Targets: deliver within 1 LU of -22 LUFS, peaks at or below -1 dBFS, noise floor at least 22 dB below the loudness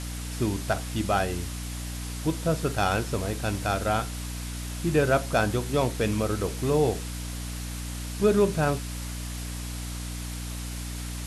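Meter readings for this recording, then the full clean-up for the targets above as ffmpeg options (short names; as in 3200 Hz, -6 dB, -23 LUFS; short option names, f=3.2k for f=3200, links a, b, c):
hum 60 Hz; harmonics up to 300 Hz; hum level -32 dBFS; noise floor -35 dBFS; noise floor target -50 dBFS; loudness -28.0 LUFS; peak -9.0 dBFS; loudness target -22.0 LUFS
-> -af "bandreject=f=60:t=h:w=6,bandreject=f=120:t=h:w=6,bandreject=f=180:t=h:w=6,bandreject=f=240:t=h:w=6,bandreject=f=300:t=h:w=6"
-af "afftdn=nr=15:nf=-35"
-af "volume=6dB"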